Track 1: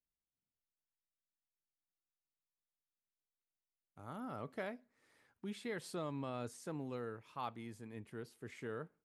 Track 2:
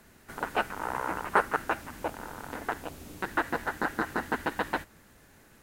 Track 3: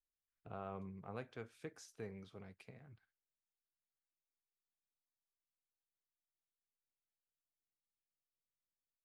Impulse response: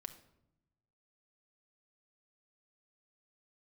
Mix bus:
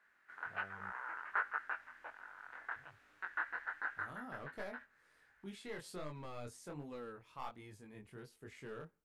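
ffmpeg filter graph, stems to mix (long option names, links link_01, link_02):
-filter_complex "[0:a]equalizer=frequency=100:width=2.1:gain=-8,aeval=exprs='clip(val(0),-1,0.0158)':channel_layout=same,volume=1dB,asplit=2[link_01][link_02];[1:a]bandpass=frequency=1600:width_type=q:width=3:csg=0,volume=-2.5dB[link_03];[2:a]volume=-6.5dB,asplit=3[link_04][link_05][link_06];[link_04]atrim=end=0.9,asetpts=PTS-STARTPTS,afade=type=out:start_time=0.896:duration=0.004:curve=hsin[link_07];[link_05]atrim=start=0.9:end=2.76,asetpts=PTS-STARTPTS,volume=0[link_08];[link_06]atrim=start=2.76,asetpts=PTS-STARTPTS,afade=type=in:duration=0.004:curve=hsin[link_09];[link_07][link_08][link_09]concat=n=3:v=0:a=1[link_10];[link_02]apad=whole_len=248180[link_11];[link_03][link_11]sidechaincompress=threshold=-49dB:ratio=8:attack=20:release=296[link_12];[link_01][link_12][link_10]amix=inputs=3:normalize=0,asubboost=boost=6:cutoff=85,flanger=delay=19.5:depth=4.8:speed=1.3"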